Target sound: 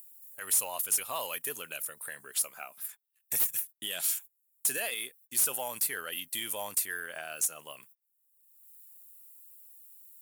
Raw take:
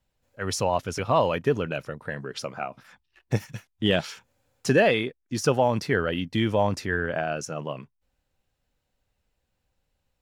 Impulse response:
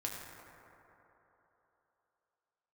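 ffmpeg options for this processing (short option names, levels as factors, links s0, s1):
-filter_complex "[0:a]agate=range=0.0282:threshold=0.00316:ratio=16:detection=peak,aderivative,asplit=2[s0][s1];[s1]acompressor=mode=upward:threshold=0.00891:ratio=2.5,volume=0.75[s2];[s0][s2]amix=inputs=2:normalize=0,alimiter=level_in=1.06:limit=0.0631:level=0:latency=1:release=34,volume=0.944,aexciter=amount=10.8:drive=5.6:freq=8000,asoftclip=type=tanh:threshold=0.0944"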